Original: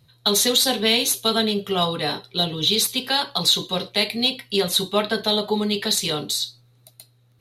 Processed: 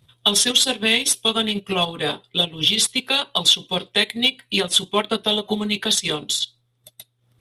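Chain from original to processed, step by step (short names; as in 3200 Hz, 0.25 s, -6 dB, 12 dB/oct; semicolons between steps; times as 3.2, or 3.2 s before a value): harmonic-percussive split harmonic -4 dB; formant shift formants -2 st; transient shaper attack +1 dB, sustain -11 dB; gain +3 dB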